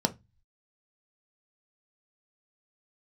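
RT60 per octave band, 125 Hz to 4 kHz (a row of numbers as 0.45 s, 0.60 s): 0.60 s, 0.30 s, 0.20 s, 0.20 s, 0.20 s, 0.20 s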